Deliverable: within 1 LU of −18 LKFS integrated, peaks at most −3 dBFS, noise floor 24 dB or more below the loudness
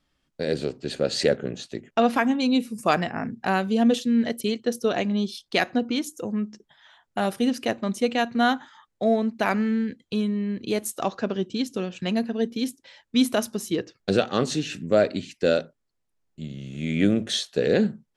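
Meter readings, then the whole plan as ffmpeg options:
integrated loudness −25.0 LKFS; sample peak −7.0 dBFS; target loudness −18.0 LKFS
→ -af "volume=7dB,alimiter=limit=-3dB:level=0:latency=1"

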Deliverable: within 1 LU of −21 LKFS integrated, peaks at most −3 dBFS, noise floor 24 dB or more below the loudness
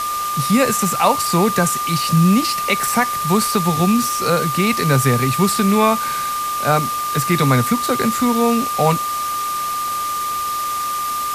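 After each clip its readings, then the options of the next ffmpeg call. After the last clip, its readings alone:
interfering tone 1,200 Hz; level of the tone −20 dBFS; background noise floor −22 dBFS; target noise floor −42 dBFS; integrated loudness −17.5 LKFS; sample peak −2.0 dBFS; target loudness −21.0 LKFS
→ -af "bandreject=frequency=1200:width=30"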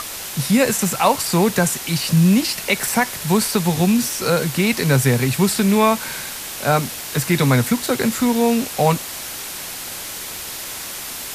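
interfering tone none found; background noise floor −31 dBFS; target noise floor −43 dBFS
→ -af "afftdn=noise_reduction=12:noise_floor=-31"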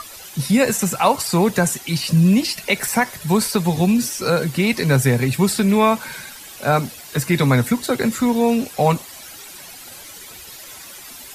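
background noise floor −39 dBFS; target noise floor −43 dBFS
→ -af "afftdn=noise_reduction=6:noise_floor=-39"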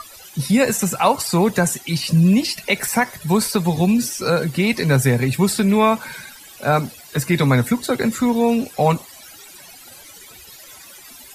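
background noise floor −42 dBFS; target noise floor −43 dBFS
→ -af "afftdn=noise_reduction=6:noise_floor=-42"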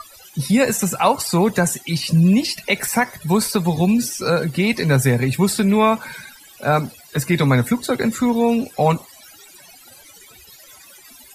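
background noise floor −46 dBFS; integrated loudness −18.5 LKFS; sample peak −3.0 dBFS; target loudness −21.0 LKFS
→ -af "volume=-2.5dB"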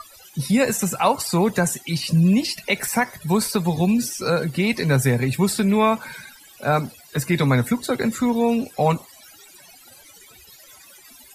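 integrated loudness −21.0 LKFS; sample peak −5.5 dBFS; background noise floor −48 dBFS

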